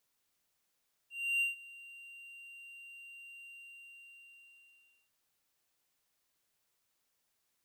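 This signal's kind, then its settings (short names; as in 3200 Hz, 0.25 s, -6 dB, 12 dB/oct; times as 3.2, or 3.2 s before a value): ADSR triangle 2770 Hz, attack 0.31 s, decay 0.14 s, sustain -21.5 dB, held 2.36 s, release 1.65 s -25.5 dBFS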